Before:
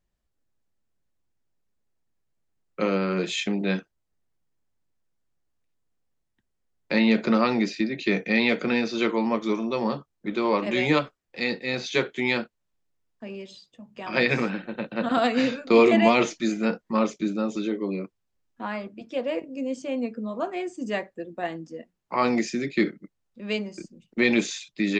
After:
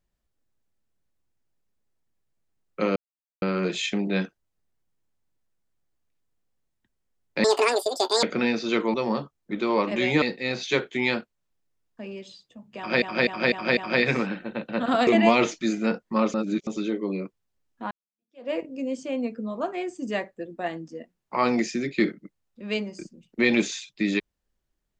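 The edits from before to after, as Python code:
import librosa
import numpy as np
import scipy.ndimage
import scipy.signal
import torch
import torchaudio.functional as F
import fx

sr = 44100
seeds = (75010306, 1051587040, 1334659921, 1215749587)

y = fx.edit(x, sr, fx.insert_silence(at_s=2.96, length_s=0.46),
    fx.speed_span(start_s=6.98, length_s=1.54, speed=1.95),
    fx.cut(start_s=9.23, length_s=0.46),
    fx.cut(start_s=10.97, length_s=0.48),
    fx.repeat(start_s=14.0, length_s=0.25, count=5),
    fx.cut(start_s=15.3, length_s=0.56),
    fx.reverse_span(start_s=17.13, length_s=0.33),
    fx.fade_in_span(start_s=18.7, length_s=0.59, curve='exp'), tone=tone)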